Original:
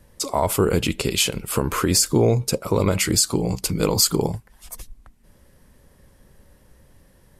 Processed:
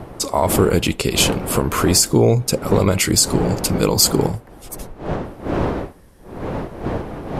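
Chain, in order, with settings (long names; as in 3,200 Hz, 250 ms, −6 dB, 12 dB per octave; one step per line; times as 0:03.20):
wind on the microphone 500 Hz −30 dBFS
level +3.5 dB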